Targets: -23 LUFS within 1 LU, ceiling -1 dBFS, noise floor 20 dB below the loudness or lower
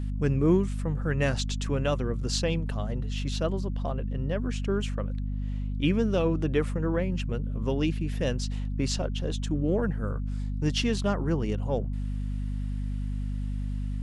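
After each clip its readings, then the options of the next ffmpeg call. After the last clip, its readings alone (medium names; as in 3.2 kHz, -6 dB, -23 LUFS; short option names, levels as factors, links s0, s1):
hum 50 Hz; highest harmonic 250 Hz; hum level -28 dBFS; loudness -29.0 LUFS; peak level -11.0 dBFS; loudness target -23.0 LUFS
-> -af "bandreject=f=50:t=h:w=4,bandreject=f=100:t=h:w=4,bandreject=f=150:t=h:w=4,bandreject=f=200:t=h:w=4,bandreject=f=250:t=h:w=4"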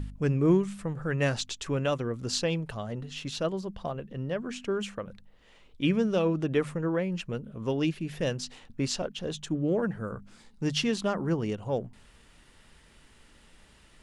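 hum not found; loudness -30.5 LUFS; peak level -12.0 dBFS; loudness target -23.0 LUFS
-> -af "volume=2.37"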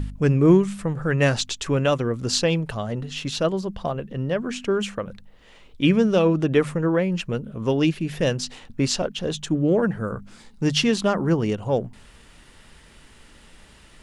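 loudness -23.0 LUFS; peak level -4.5 dBFS; noise floor -51 dBFS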